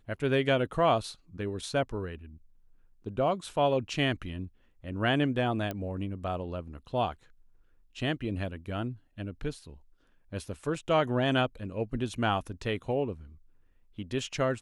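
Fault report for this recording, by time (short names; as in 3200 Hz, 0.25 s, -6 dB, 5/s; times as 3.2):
5.71 pop -20 dBFS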